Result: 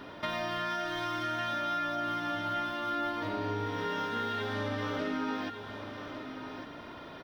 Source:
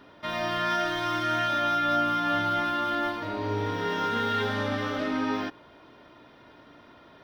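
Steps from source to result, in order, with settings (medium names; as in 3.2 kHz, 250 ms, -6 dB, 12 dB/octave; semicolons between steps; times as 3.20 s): compression 6:1, threshold -39 dBFS, peak gain reduction 16 dB; delay 1154 ms -9.5 dB; trim +6.5 dB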